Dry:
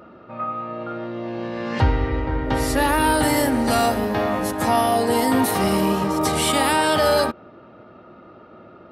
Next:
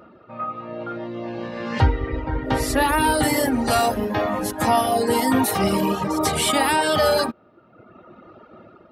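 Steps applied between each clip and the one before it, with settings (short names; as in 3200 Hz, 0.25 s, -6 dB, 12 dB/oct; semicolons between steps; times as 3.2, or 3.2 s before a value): reverb removal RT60 1.1 s; AGC gain up to 4.5 dB; gain -2.5 dB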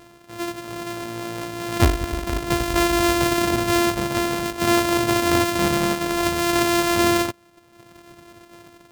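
sample sorter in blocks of 128 samples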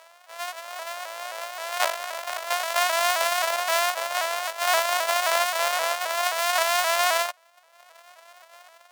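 elliptic high-pass 570 Hz, stop band 50 dB; shaped vibrato saw up 3.8 Hz, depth 100 cents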